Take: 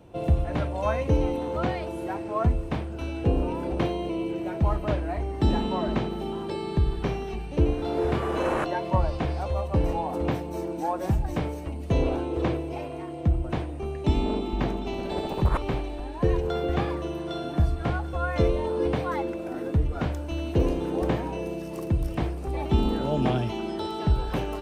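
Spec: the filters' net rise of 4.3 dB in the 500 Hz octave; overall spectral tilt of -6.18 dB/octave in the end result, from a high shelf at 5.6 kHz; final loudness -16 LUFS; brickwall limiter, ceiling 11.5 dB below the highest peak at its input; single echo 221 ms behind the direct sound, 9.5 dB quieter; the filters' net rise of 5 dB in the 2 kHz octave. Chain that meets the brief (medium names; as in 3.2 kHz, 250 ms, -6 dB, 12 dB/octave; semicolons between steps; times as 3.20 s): peaking EQ 500 Hz +5 dB; peaking EQ 2 kHz +7 dB; treble shelf 5.6 kHz -5 dB; peak limiter -20 dBFS; delay 221 ms -9.5 dB; trim +13 dB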